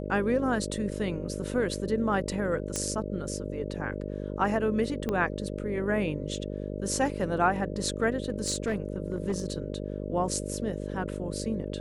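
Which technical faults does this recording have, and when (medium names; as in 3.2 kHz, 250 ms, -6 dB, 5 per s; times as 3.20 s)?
buzz 50 Hz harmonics 12 -35 dBFS
2.76 s: pop -15 dBFS
5.09 s: pop -17 dBFS
8.20–9.52 s: clipped -23 dBFS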